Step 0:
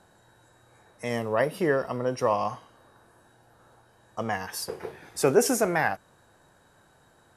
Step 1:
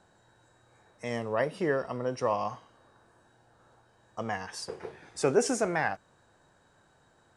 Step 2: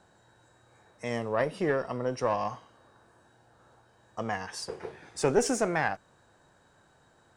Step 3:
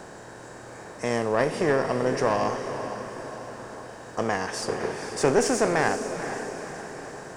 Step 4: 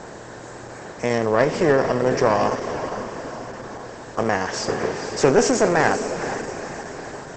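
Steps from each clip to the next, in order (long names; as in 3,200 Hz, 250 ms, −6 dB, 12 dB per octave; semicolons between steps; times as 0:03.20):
Butterworth low-pass 9,000 Hz 36 dB per octave; level −4 dB
one-sided soft clipper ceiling −19.5 dBFS; level +1.5 dB
compressor on every frequency bin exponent 0.6; feedback delay with all-pass diffusion 470 ms, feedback 54%, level −9 dB; level +1.5 dB
level +6 dB; Opus 12 kbit/s 48,000 Hz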